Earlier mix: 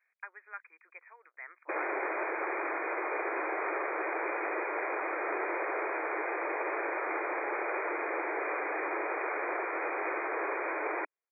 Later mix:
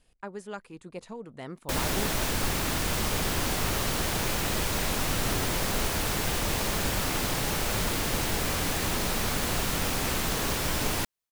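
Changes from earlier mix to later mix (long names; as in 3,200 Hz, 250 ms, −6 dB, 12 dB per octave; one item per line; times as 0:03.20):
speech: remove high-pass with resonance 1,800 Hz, resonance Q 1.7
master: remove linear-phase brick-wall band-pass 310–2,500 Hz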